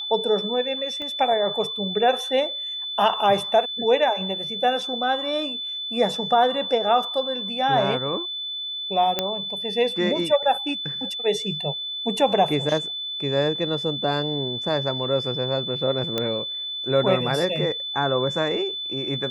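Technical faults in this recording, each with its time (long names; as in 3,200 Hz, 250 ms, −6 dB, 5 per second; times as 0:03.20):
whistle 3,500 Hz −28 dBFS
0:01.02: click −22 dBFS
0:09.19: click −7 dBFS
0:16.18: click −10 dBFS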